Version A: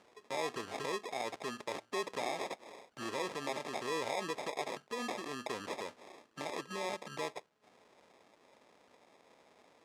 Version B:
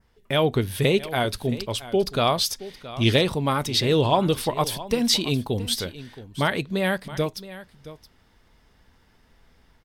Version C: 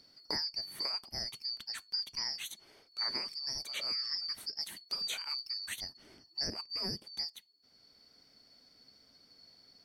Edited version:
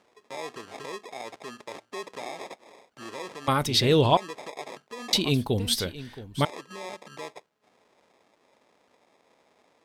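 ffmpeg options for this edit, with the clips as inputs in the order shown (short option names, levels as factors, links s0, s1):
-filter_complex "[1:a]asplit=2[s0][s1];[0:a]asplit=3[s2][s3][s4];[s2]atrim=end=3.482[s5];[s0]atrim=start=3.478:end=4.172[s6];[s3]atrim=start=4.168:end=5.132[s7];[s1]atrim=start=5.128:end=6.452[s8];[s4]atrim=start=6.448[s9];[s5][s6]acrossfade=d=0.004:c1=hsin:c2=hsin[s10];[s10][s7]acrossfade=d=0.004:c1=hsin:c2=hsin[s11];[s11][s8]acrossfade=d=0.004:c1=hsin:c2=hsin[s12];[s12][s9]acrossfade=d=0.004:c1=hsin:c2=hsin"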